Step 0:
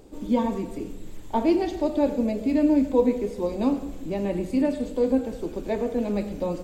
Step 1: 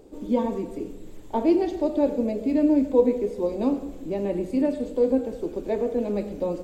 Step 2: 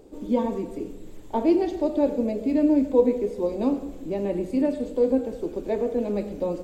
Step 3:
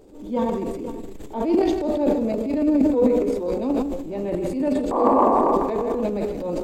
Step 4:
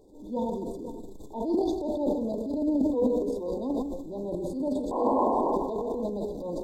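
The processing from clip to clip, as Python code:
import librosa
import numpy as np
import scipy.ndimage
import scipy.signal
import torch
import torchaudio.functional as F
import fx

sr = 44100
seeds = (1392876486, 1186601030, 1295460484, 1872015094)

y1 = fx.peak_eq(x, sr, hz=430.0, db=7.0, octaves=1.5)
y1 = F.gain(torch.from_numpy(y1), -4.5).numpy()
y2 = y1
y3 = fx.spec_paint(y2, sr, seeds[0], shape='noise', start_s=4.91, length_s=0.62, low_hz=210.0, high_hz=1200.0, level_db=-19.0)
y3 = fx.echo_multitap(y3, sr, ms=(154, 502), db=(-10.0, -15.5))
y3 = fx.transient(y3, sr, attack_db=-7, sustain_db=11)
y4 = fx.brickwall_bandstop(y3, sr, low_hz=1100.0, high_hz=3400.0)
y4 = F.gain(torch.from_numpy(y4), -7.0).numpy()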